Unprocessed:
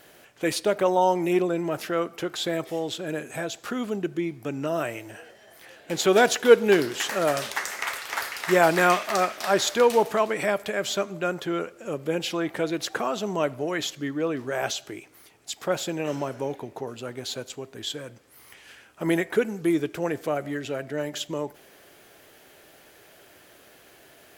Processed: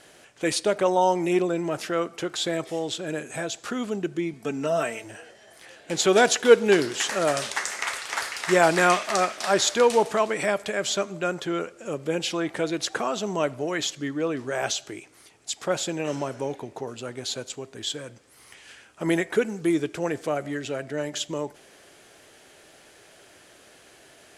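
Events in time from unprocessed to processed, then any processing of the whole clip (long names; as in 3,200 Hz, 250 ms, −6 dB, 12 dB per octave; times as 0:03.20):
0:04.33–0:05.04: comb filter 4.5 ms, depth 67%
whole clip: low-pass filter 9,400 Hz 24 dB per octave; high-shelf EQ 6,700 Hz +8.5 dB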